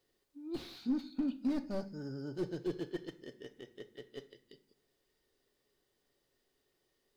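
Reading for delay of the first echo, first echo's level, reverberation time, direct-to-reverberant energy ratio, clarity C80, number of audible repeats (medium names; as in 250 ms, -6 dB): no echo, no echo, 0.45 s, 9.0 dB, 21.0 dB, no echo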